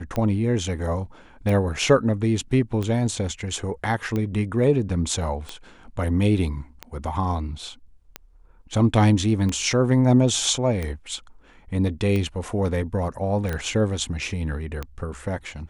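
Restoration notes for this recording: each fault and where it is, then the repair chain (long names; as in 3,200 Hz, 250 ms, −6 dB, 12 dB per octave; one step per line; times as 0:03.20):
scratch tick 45 rpm −15 dBFS
0:13.53: click −16 dBFS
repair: click removal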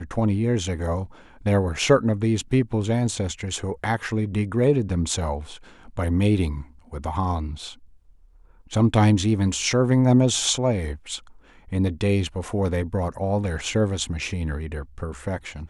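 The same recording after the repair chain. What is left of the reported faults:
none of them is left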